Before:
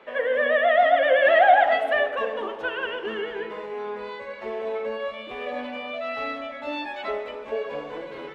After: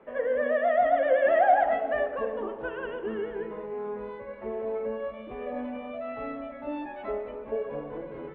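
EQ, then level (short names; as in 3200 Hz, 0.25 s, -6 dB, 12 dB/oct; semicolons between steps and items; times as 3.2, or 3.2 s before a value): LPF 1600 Hz 6 dB/oct; air absorption 370 m; low shelf 280 Hz +11.5 dB; -4.0 dB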